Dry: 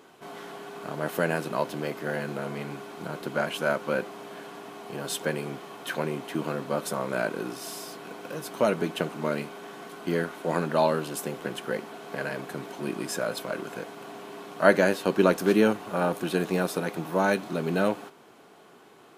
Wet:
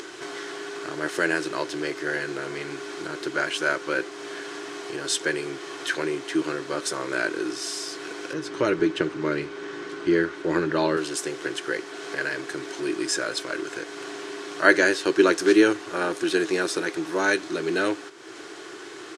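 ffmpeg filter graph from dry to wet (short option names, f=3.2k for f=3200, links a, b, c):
-filter_complex "[0:a]asettb=1/sr,asplit=3[a][b][c];[a]atrim=end=8.334[d];[b]atrim=start=8.33:end=10.97,asetpts=PTS-STARTPTS,afade=t=in:d=0.004:c=qsin,afade=t=out:st=2.636:d=0.004:c=qsin,aemphasis=mode=reproduction:type=bsi,bandreject=f=700:w=10[e];[c]atrim=start=10.966[f];[d][e]acrossfade=d=0.004:c1=hsin:c2=qsin[g];[g][f]acrossfade=d=0.004:c1=qsin:c2=hsin,firequalizer=gain_entry='entry(120,0);entry(220,-13);entry(320,13);entry(490,1);entry(740,-2);entry(1700,12);entry(2500,7);entry(5400,14);entry(8800,9);entry(13000,-12)':delay=0.05:min_phase=1,acompressor=mode=upward:threshold=-26dB:ratio=2.5,volume=-3dB"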